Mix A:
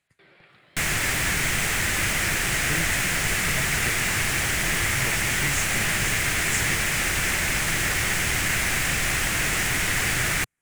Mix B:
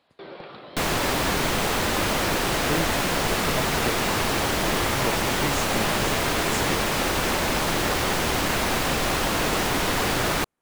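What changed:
first sound +10.5 dB; master: add graphic EQ 125/250/500/1000/2000/4000/8000 Hz -3/+7/+8/+9/-9/+6/-7 dB

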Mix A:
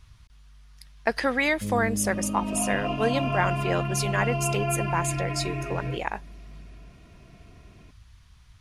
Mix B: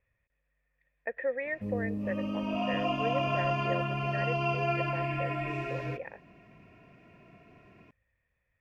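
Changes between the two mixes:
speech: add cascade formant filter e; master: add bass shelf 160 Hz -9.5 dB

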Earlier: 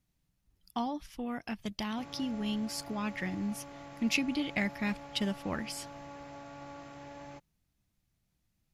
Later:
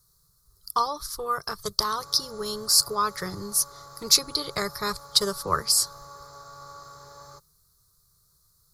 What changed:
speech +8.5 dB; master: add FFT filter 160 Hz 0 dB, 250 Hz -26 dB, 410 Hz +6 dB, 760 Hz -8 dB, 1.2 kHz +14 dB, 1.8 kHz -7 dB, 2.8 kHz -21 dB, 4.2 kHz +13 dB, 6.3 kHz +10 dB, 9.7 kHz +15 dB

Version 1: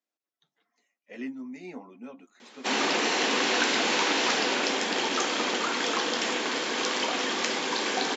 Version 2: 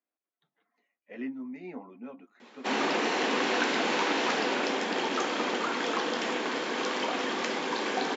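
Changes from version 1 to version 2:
speech: add low-pass 2.4 kHz 12 dB/octave; background: add treble shelf 3.3 kHz -11.5 dB

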